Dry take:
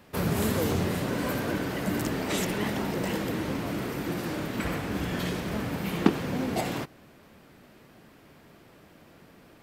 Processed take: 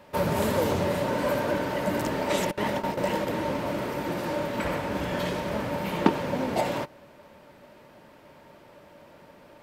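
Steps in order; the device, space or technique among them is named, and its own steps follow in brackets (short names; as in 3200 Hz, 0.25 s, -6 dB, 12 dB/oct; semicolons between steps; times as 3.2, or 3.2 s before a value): 2.51–3.27 gate with hold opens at -20 dBFS; low shelf 340 Hz -4.5 dB; inside a helmet (high shelf 5500 Hz -6 dB; small resonant body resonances 580/910 Hz, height 13 dB, ringing for 60 ms); gain +2 dB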